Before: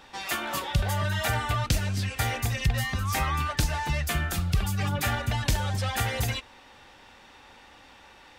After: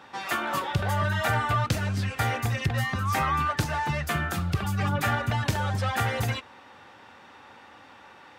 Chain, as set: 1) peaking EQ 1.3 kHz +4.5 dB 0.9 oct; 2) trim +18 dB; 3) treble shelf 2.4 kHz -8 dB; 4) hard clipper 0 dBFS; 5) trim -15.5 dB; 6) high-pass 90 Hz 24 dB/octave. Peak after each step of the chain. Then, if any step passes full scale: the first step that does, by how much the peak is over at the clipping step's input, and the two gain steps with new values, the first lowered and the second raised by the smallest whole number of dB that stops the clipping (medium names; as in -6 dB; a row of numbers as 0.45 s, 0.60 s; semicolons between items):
-13.0 dBFS, +5.0 dBFS, +3.5 dBFS, 0.0 dBFS, -15.5 dBFS, -11.0 dBFS; step 2, 3.5 dB; step 2 +14 dB, step 5 -11.5 dB